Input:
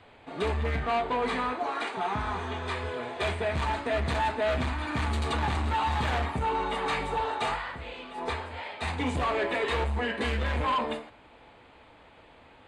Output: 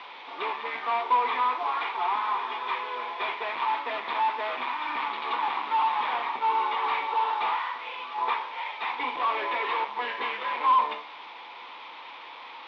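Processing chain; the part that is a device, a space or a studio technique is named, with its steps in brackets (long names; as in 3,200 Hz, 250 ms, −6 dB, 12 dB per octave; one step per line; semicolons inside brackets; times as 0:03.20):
digital answering machine (band-pass filter 390–3,100 Hz; linear delta modulator 32 kbit/s, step −41 dBFS; loudspeaker in its box 420–3,700 Hz, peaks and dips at 440 Hz −4 dB, 630 Hz −9 dB, 1,000 Hz +10 dB, 1,600 Hz −5 dB, 2,300 Hz +5 dB, 3,500 Hz +7 dB)
0:07.75–0:08.38: parametric band 1,200 Hz +4 dB 1.2 octaves
level +2 dB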